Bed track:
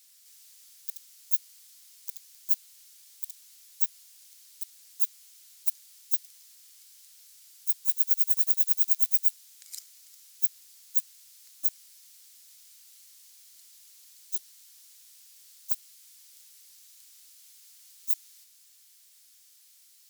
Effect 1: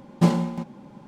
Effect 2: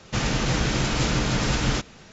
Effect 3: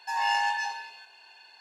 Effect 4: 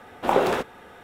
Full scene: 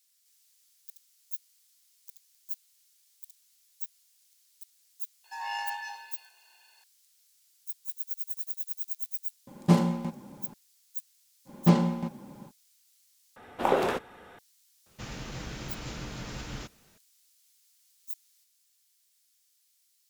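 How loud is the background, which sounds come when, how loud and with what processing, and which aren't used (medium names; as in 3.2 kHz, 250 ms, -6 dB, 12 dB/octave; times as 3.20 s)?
bed track -11.5 dB
5.24 s: add 3 -8.5 dB + high-pass 380 Hz
9.47 s: add 1 -2.5 dB
11.45 s: add 1 -2 dB, fades 0.05 s + low-pass 7 kHz
13.36 s: replace with 4 -4.5 dB
14.86 s: add 2 -16 dB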